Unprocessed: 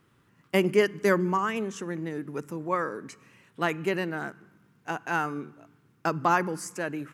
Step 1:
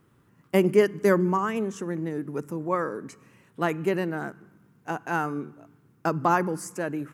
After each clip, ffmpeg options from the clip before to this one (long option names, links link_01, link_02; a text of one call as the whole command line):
ffmpeg -i in.wav -af "equalizer=frequency=3200:width_type=o:width=2.6:gain=-7.5,volume=3.5dB" out.wav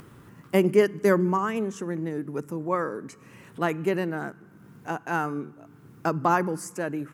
ffmpeg -i in.wav -af "acompressor=mode=upward:threshold=-37dB:ratio=2.5" out.wav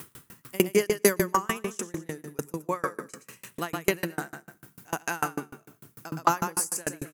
ffmpeg -i in.wav -af "crystalizer=i=7.5:c=0,aecho=1:1:119|238|357|476:0.355|0.124|0.0435|0.0152,aeval=exprs='val(0)*pow(10,-33*if(lt(mod(6.7*n/s,1),2*abs(6.7)/1000),1-mod(6.7*n/s,1)/(2*abs(6.7)/1000),(mod(6.7*n/s,1)-2*abs(6.7)/1000)/(1-2*abs(6.7)/1000))/20)':channel_layout=same,volume=2.5dB" out.wav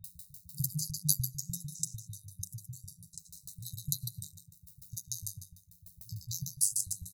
ffmpeg -i in.wav -filter_complex "[0:a]aeval=exprs='val(0)*sin(2*PI*50*n/s)':channel_layout=same,acrossover=split=200[link_01][link_02];[link_02]adelay=40[link_03];[link_01][link_03]amix=inputs=2:normalize=0,afftfilt=real='re*(1-between(b*sr/4096,180,3700))':imag='im*(1-between(b*sr/4096,180,3700))':win_size=4096:overlap=0.75,volume=2.5dB" out.wav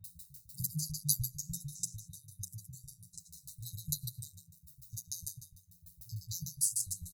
ffmpeg -i in.wav -filter_complex "[0:a]asplit=2[link_01][link_02];[link_02]adelay=7.3,afreqshift=-1.6[link_03];[link_01][link_03]amix=inputs=2:normalize=1,volume=1dB" out.wav